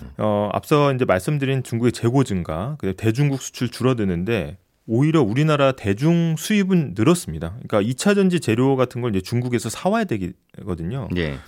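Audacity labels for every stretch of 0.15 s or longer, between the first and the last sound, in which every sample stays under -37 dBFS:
4.550000	4.880000	silence
10.320000	10.540000	silence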